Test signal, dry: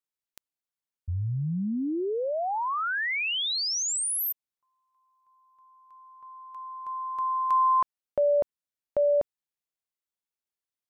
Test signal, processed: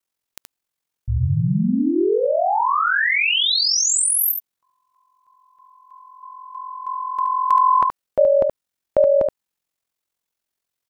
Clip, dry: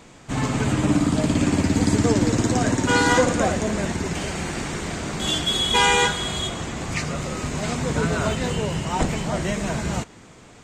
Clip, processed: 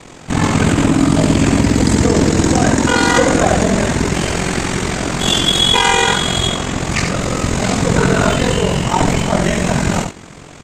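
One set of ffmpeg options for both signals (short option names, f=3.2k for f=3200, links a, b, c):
-filter_complex "[0:a]aeval=exprs='val(0)*sin(2*PI*22*n/s)':c=same,asplit=2[a][b];[b]aecho=0:1:74:0.501[c];[a][c]amix=inputs=2:normalize=0,alimiter=level_in=13dB:limit=-1dB:release=50:level=0:latency=1,volume=-1dB"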